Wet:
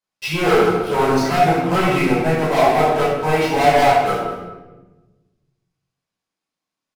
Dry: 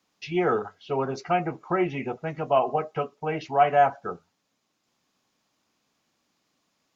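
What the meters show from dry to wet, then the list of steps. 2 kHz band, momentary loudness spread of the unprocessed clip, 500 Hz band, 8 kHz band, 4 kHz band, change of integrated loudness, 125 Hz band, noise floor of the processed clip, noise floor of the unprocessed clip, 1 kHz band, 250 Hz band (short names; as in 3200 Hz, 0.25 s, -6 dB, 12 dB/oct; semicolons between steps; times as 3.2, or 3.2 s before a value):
+12.5 dB, 11 LU, +9.0 dB, n/a, +16.0 dB, +9.0 dB, +12.0 dB, -85 dBFS, -76 dBFS, +8.5 dB, +11.0 dB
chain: CVSD 64 kbps; low shelf 190 Hz -8.5 dB; sample leveller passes 5; echo 0.217 s -17 dB; shoebox room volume 660 m³, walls mixed, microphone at 5.2 m; gain -13 dB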